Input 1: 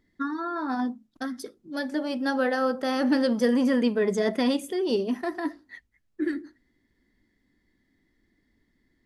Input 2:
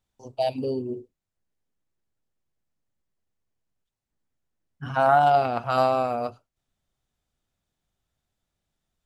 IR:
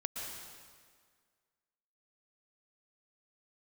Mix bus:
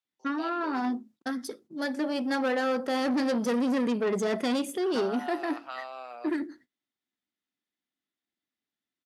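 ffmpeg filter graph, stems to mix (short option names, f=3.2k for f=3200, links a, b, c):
-filter_complex "[0:a]agate=range=-27dB:threshold=-54dB:ratio=16:detection=peak,aeval=exprs='(tanh(17.8*val(0)+0.25)-tanh(0.25))/17.8':c=same,adelay=50,volume=2dB[a];[1:a]acrossover=split=300 4700:gain=0.0794 1 0.178[b][c][d];[b][c][d]amix=inputs=3:normalize=0,acompressor=threshold=-23dB:ratio=6,tiltshelf=f=1.1k:g=-8,volume=-11dB[e];[a][e]amix=inputs=2:normalize=0,highpass=160"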